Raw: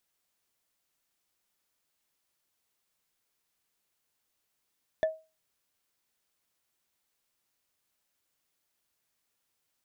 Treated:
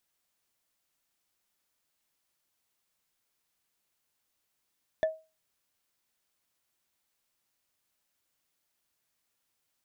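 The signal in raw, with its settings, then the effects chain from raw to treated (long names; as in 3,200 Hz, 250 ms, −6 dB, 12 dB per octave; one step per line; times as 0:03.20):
struck wood, lowest mode 636 Hz, decay 0.29 s, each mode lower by 10 dB, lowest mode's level −20 dB
parametric band 430 Hz −2.5 dB 0.28 octaves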